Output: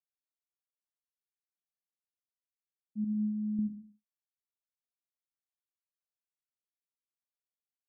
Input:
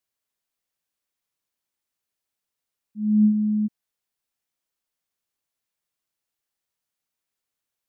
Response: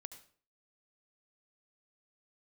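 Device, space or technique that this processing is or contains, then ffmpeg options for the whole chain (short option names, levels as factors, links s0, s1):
television next door: -filter_complex "[0:a]asettb=1/sr,asplit=3[s0][s1][s2];[s0]atrim=end=3.044[s3];[s1]atrim=start=3.04:end=3.59,asetpts=PTS-STARTPTS,afade=t=in:d=0.004:c=qsin,afade=t=out:st=0.546:d=0.004:c=qsin,agate=range=0.316:threshold=0.447:ratio=16:detection=peak[s4];[s2]atrim=start=3.586[s5];[s3][s4]acrossfade=d=0.004:c1=hsin:c2=qsin[s6];[s6][s5]acrossfade=d=0.004:c1=qsin:c2=hsin,acompressor=threshold=0.0355:ratio=6,lowpass=270[s7];[1:a]atrim=start_sample=2205[s8];[s7][s8]afir=irnorm=-1:irlink=0,agate=range=0.0224:threshold=0.001:ratio=3:detection=peak,equalizer=f=250:w=1.5:g=8"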